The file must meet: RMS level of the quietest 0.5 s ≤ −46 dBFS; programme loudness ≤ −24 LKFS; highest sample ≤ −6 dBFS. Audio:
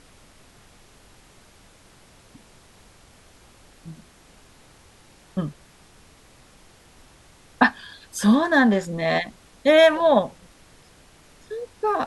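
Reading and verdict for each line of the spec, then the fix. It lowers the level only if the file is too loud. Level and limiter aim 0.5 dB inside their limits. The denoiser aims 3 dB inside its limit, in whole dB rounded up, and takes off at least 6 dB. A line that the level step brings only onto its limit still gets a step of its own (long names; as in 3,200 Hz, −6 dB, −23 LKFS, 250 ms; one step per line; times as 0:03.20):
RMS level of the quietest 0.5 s −52 dBFS: in spec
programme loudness −20.5 LKFS: out of spec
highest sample −3.0 dBFS: out of spec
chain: level −4 dB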